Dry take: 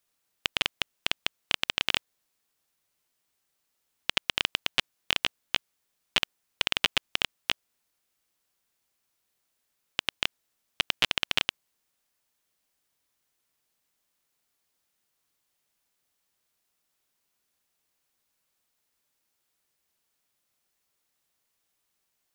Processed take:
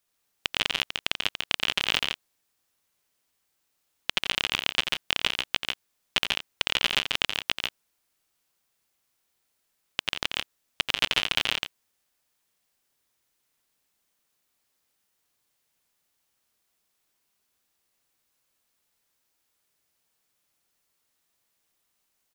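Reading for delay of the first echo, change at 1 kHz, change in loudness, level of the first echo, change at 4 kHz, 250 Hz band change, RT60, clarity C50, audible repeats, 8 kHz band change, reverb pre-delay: 87 ms, +2.5 dB, +2.0 dB, −8.5 dB, +2.5 dB, +2.5 dB, no reverb audible, no reverb audible, 3, +2.5 dB, no reverb audible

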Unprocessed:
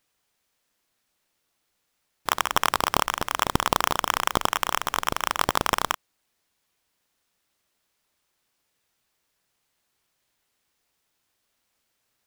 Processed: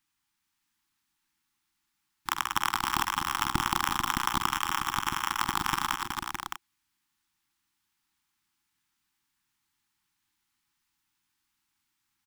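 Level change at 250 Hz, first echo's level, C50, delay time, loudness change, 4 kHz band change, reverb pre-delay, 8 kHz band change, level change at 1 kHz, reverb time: −3.5 dB, −11.0 dB, no reverb audible, 47 ms, −4.5 dB, −4.0 dB, no reverb audible, −4.0 dB, −4.0 dB, no reverb audible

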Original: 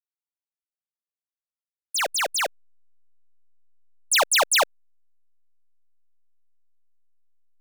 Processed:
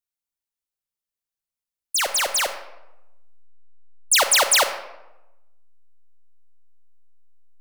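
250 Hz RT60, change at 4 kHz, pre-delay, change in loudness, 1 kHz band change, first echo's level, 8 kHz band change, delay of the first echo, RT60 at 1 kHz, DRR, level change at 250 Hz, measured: 1.0 s, +3.0 dB, 26 ms, +3.0 dB, +1.0 dB, no echo audible, +5.0 dB, no echo audible, 0.95 s, 8.0 dB, +2.0 dB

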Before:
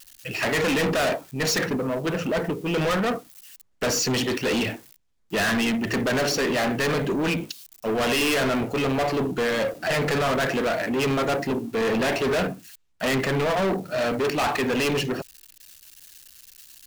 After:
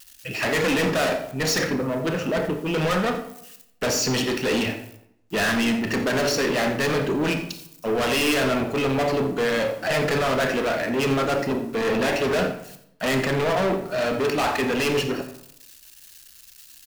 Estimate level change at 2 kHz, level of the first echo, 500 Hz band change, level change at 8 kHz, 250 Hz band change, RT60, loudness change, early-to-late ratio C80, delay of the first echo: +1.0 dB, −15.0 dB, +1.5 dB, +0.5 dB, +1.0 dB, 0.75 s, +1.0 dB, 11.0 dB, 87 ms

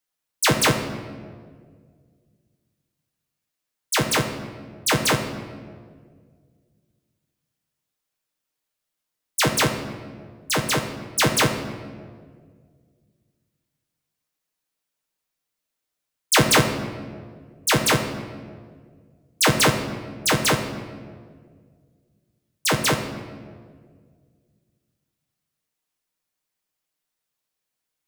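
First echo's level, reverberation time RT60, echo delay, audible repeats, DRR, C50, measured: no echo audible, 1.8 s, no echo audible, no echo audible, 2.5 dB, 7.5 dB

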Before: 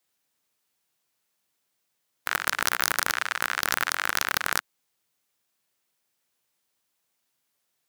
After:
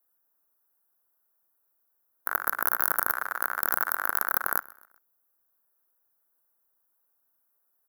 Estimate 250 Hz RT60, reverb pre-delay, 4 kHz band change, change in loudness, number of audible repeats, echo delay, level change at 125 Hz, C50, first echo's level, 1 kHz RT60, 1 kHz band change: no reverb audible, no reverb audible, −20.5 dB, −0.5 dB, 2, 129 ms, −8.5 dB, no reverb audible, −22.5 dB, no reverb audible, −0.5 dB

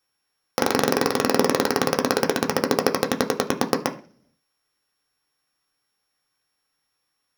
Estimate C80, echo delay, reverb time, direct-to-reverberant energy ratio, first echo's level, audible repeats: 19.0 dB, no echo audible, 0.45 s, 2.0 dB, no echo audible, no echo audible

